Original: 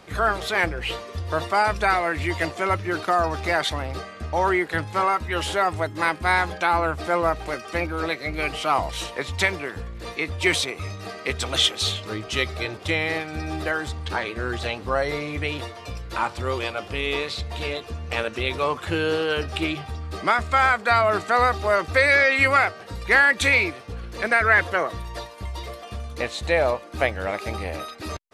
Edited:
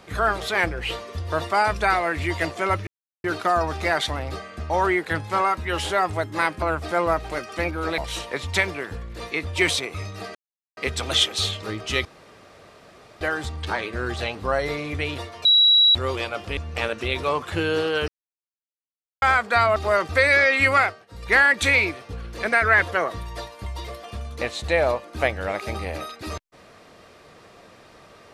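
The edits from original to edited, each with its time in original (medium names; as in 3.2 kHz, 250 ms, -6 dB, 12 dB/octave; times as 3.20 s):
2.87 s: insert silence 0.37 s
6.25–6.78 s: delete
8.14–8.83 s: delete
11.20 s: insert silence 0.42 s
12.48–13.64 s: room tone
15.88–16.38 s: bleep 3.89 kHz -12 dBFS
17.00–17.92 s: delete
19.43–20.57 s: mute
21.11–21.55 s: delete
22.61–23.10 s: dip -17 dB, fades 0.24 s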